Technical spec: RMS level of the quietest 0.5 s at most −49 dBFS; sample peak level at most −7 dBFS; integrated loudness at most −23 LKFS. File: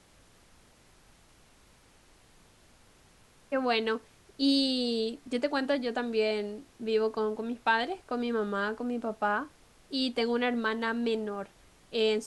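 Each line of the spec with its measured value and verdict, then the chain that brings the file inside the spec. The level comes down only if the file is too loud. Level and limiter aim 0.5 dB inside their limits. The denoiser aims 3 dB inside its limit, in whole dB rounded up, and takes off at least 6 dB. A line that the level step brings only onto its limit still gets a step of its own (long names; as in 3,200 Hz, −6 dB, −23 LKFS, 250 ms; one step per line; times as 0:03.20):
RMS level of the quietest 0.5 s −60 dBFS: in spec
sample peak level −14.0 dBFS: in spec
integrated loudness −30.5 LKFS: in spec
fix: no processing needed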